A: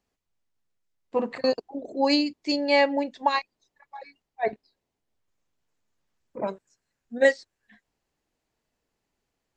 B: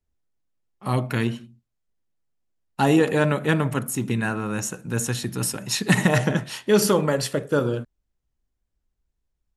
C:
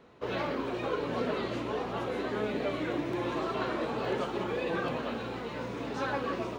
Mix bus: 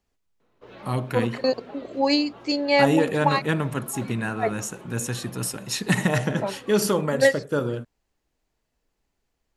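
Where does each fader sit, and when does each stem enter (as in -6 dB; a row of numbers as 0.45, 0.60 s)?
+1.0, -3.0, -12.0 dB; 0.00, 0.00, 0.40 s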